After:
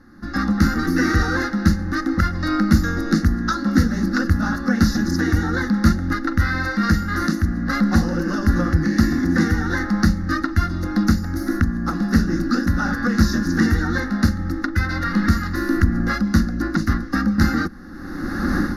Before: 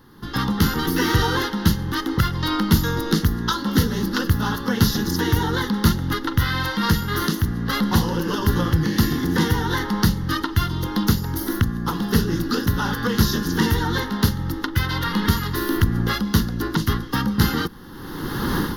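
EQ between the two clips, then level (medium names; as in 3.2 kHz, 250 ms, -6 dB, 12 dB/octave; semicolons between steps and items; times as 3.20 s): low-pass 6.2 kHz 12 dB/octave; peaking EQ 100 Hz +5.5 dB 1.8 oct; static phaser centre 640 Hz, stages 8; +3.5 dB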